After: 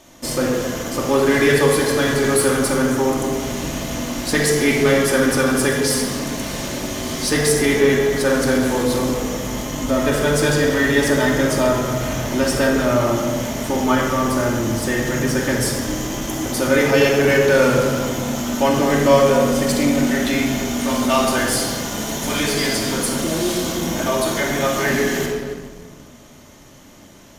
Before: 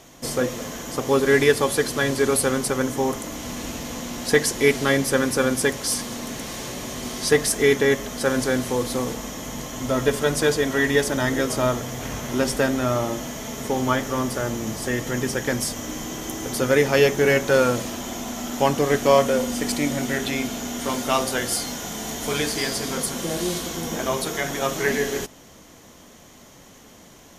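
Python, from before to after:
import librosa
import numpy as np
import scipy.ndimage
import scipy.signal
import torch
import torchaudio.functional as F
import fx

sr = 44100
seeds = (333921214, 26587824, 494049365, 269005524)

p1 = fx.room_shoebox(x, sr, seeds[0], volume_m3=2100.0, walls='mixed', distance_m=2.6)
p2 = fx.fuzz(p1, sr, gain_db=24.0, gate_db=-32.0)
p3 = p1 + (p2 * 10.0 ** (-12.0 / 20.0))
y = p3 * 10.0 ** (-2.0 / 20.0)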